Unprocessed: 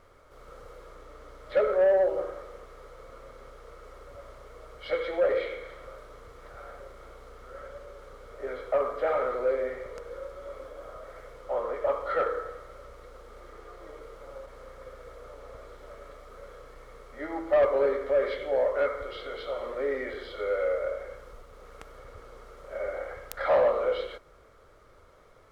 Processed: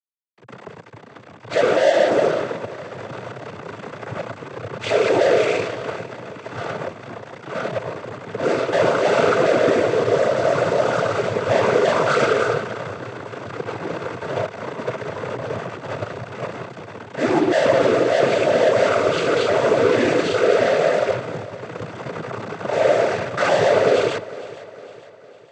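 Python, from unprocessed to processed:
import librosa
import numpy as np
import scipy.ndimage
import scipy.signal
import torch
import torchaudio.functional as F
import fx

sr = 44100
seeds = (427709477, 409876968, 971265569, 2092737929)

p1 = fx.peak_eq(x, sr, hz=150.0, db=9.0, octaves=0.44)
p2 = fx.rider(p1, sr, range_db=10, speed_s=2.0)
p3 = p1 + F.gain(torch.from_numpy(p2), 2.0).numpy()
p4 = fx.fuzz(p3, sr, gain_db=35.0, gate_db=-38.0)
p5 = fx.tilt_eq(p4, sr, slope=-2.0)
p6 = fx.noise_vocoder(p5, sr, seeds[0], bands=16)
p7 = p6 + fx.echo_feedback(p6, sr, ms=456, feedback_pct=50, wet_db=-17.5, dry=0)
y = F.gain(torch.from_numpy(p7), -3.0).numpy()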